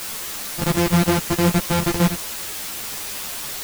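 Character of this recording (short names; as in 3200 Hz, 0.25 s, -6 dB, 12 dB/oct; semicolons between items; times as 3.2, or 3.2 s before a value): a buzz of ramps at a fixed pitch in blocks of 256 samples; chopped level 6.5 Hz, depth 65%, duty 65%; a quantiser's noise floor 6-bit, dither triangular; a shimmering, thickened sound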